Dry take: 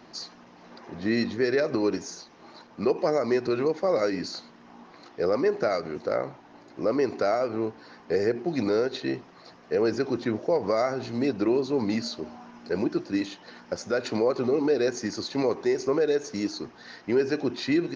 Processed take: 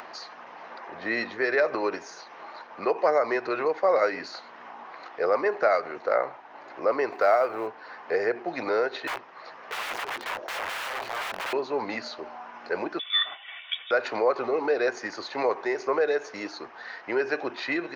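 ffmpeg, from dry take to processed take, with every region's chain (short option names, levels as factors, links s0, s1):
-filter_complex "[0:a]asettb=1/sr,asplit=3[s0][s1][s2];[s0]atrim=end=7.124[s3];[s1]atrim=start=7.12:end=7.67,asetpts=PTS-STARTPTS,afade=t=in:d=0.004:c=qsin,afade=t=out:st=0.546:d=0.004:c=qsin,equalizer=f=210:t=o:w=0.62:g=-3,acrusher=bits=7:mode=log:mix=0:aa=0.000001[s4];[s2]atrim=start=7.666[s5];[s3][s4]acrossfade=d=0.004:c1=hsin:c2=qsin[s6];[s6][s5]acrossfade=d=0.004:c1=qsin:c2=hsin,asettb=1/sr,asplit=3[s7][s8][s9];[s7]atrim=end=9.074[s10];[s8]atrim=start=9.07:end=11.53,asetpts=PTS-STARTPTS,afade=t=in:d=0.004:c=qsin,afade=t=out:st=2.456:d=0.004:c=qsin,highpass=f=77:w=0.5412,highpass=f=77:w=1.3066,bandreject=f=710:w=17,aeval=exprs='(mod(29.9*val(0)+1,2)-1)/29.9':c=same[s11];[s9]atrim=start=11.526[s12];[s10][s11]acrossfade=d=0.004:c1=hsin:c2=qsin[s13];[s13][s12]acrossfade=d=0.004:c1=qsin:c2=hsin,asettb=1/sr,asplit=3[s14][s15][s16];[s14]atrim=end=12.994[s17];[s15]atrim=start=12.99:end=13.91,asetpts=PTS-STARTPTS,afade=t=in:d=0.004:c=qsin,afade=t=out:st=0.916:d=0.004:c=qsin,aecho=1:1:2.6:0.73,atrim=end_sample=40572,lowpass=f=3200:t=q:w=0.5098,lowpass=f=3200:t=q:w=0.6013,lowpass=f=3200:t=q:w=0.9,lowpass=f=3200:t=q:w=2.563,afreqshift=-3800[s18];[s16]atrim=start=13.906[s19];[s17][s18]acrossfade=d=0.004:c1=hsin:c2=qsin[s20];[s20][s19]acrossfade=d=0.004:c1=qsin:c2=hsin,acrossover=split=540 2800:gain=0.0708 1 0.141[s21][s22][s23];[s21][s22][s23]amix=inputs=3:normalize=0,acompressor=mode=upward:threshold=0.00631:ratio=2.5,volume=2.37"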